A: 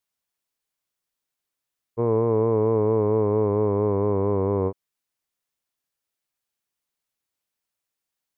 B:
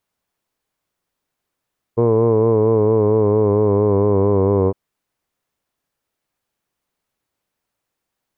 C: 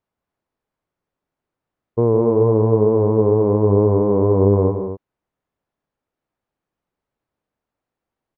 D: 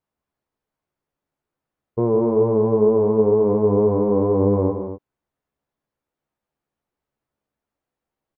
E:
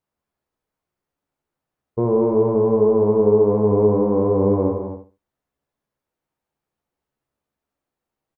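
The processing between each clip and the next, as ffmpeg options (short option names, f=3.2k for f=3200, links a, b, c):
-af "highshelf=f=2k:g=-11,alimiter=level_in=18dB:limit=-1dB:release=50:level=0:latency=1,volume=-5dB"
-af "lowpass=f=1k:p=1,aecho=1:1:163.3|242:0.355|0.316"
-filter_complex "[0:a]asplit=2[a][b];[b]adelay=14,volume=-5dB[c];[a][c]amix=inputs=2:normalize=0,volume=-3dB"
-af "aecho=1:1:67|134|201:0.422|0.0928|0.0204"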